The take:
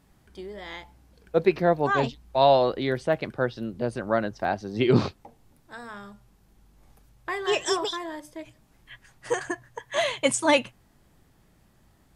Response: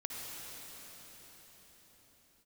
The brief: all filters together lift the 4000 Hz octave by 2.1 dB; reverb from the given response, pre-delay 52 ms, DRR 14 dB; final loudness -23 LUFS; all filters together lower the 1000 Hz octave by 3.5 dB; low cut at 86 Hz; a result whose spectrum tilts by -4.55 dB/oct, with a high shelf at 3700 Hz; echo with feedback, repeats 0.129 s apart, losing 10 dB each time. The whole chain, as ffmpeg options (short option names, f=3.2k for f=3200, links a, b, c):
-filter_complex "[0:a]highpass=86,equalizer=f=1k:t=o:g=-5,highshelf=f=3.7k:g=-4,equalizer=f=4k:t=o:g=5.5,aecho=1:1:129|258|387|516:0.316|0.101|0.0324|0.0104,asplit=2[a][b];[1:a]atrim=start_sample=2205,adelay=52[c];[b][c]afir=irnorm=-1:irlink=0,volume=-15.5dB[d];[a][d]amix=inputs=2:normalize=0,volume=3dB"